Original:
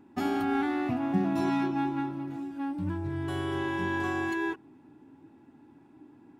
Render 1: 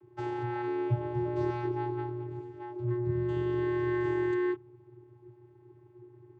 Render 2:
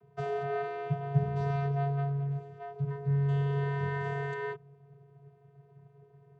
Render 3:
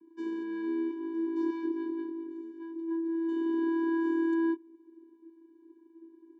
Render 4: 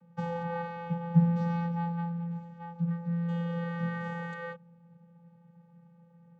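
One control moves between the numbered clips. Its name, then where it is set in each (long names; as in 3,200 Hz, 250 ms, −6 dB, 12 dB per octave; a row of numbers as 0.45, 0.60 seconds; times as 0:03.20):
channel vocoder, frequency: 120, 140, 330, 170 Hertz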